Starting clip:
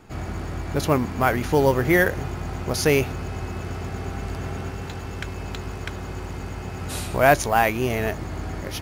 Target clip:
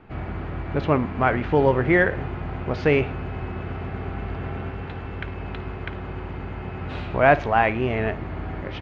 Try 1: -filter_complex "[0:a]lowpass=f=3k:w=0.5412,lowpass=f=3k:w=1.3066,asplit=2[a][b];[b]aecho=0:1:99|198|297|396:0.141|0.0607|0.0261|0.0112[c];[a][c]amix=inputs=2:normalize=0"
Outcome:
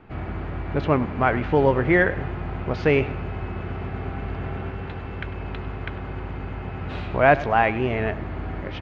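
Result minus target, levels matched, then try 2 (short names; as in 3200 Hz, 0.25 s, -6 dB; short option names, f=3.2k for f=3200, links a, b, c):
echo 45 ms late
-filter_complex "[0:a]lowpass=f=3k:w=0.5412,lowpass=f=3k:w=1.3066,asplit=2[a][b];[b]aecho=0:1:54|108|162|216:0.141|0.0607|0.0261|0.0112[c];[a][c]amix=inputs=2:normalize=0"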